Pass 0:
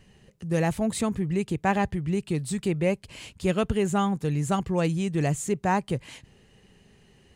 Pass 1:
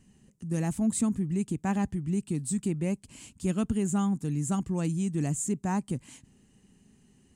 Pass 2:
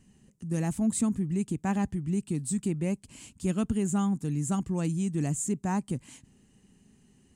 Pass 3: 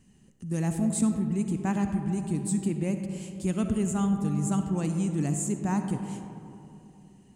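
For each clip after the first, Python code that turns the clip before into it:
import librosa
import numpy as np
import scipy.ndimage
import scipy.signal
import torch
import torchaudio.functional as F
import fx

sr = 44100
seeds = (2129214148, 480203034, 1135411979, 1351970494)

y1 = fx.graphic_eq(x, sr, hz=(250, 500, 2000, 4000, 8000), db=(11, -8, -4, -5, 11))
y1 = y1 * 10.0 ** (-7.0 / 20.0)
y2 = y1
y3 = fx.rev_freeverb(y2, sr, rt60_s=3.0, hf_ratio=0.3, predelay_ms=20, drr_db=6.0)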